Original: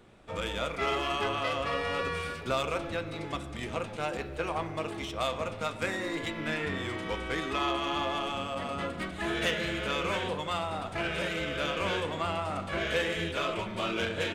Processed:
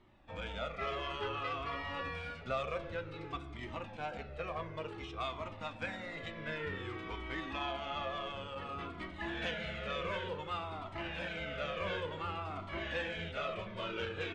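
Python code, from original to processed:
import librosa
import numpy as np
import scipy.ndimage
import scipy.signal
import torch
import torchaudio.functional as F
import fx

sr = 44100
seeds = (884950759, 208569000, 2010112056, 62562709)

y = scipy.signal.sosfilt(scipy.signal.butter(2, 4000.0, 'lowpass', fs=sr, output='sos'), x)
y = fx.comb_cascade(y, sr, direction='falling', hz=0.55)
y = F.gain(torch.from_numpy(y), -3.0).numpy()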